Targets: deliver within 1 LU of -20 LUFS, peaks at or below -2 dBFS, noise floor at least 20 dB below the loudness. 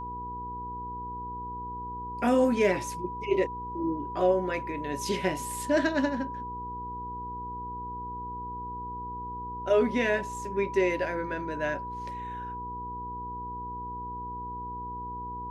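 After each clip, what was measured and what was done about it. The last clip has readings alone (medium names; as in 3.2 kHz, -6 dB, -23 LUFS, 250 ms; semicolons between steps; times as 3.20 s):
hum 60 Hz; highest harmonic 480 Hz; hum level -41 dBFS; steady tone 980 Hz; tone level -35 dBFS; loudness -31.0 LUFS; peak level -12.0 dBFS; loudness target -20.0 LUFS
-> de-hum 60 Hz, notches 8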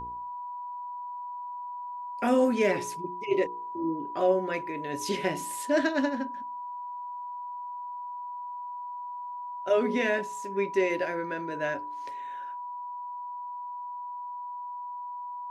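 hum not found; steady tone 980 Hz; tone level -35 dBFS
-> band-stop 980 Hz, Q 30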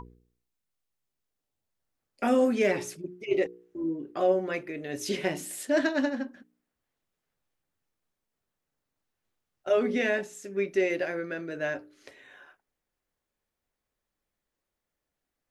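steady tone not found; loudness -29.0 LUFS; peak level -13.5 dBFS; loudness target -20.0 LUFS
-> trim +9 dB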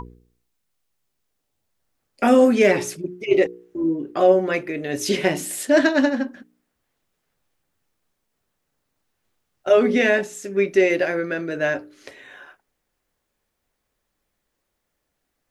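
loudness -20.0 LUFS; peak level -4.5 dBFS; noise floor -77 dBFS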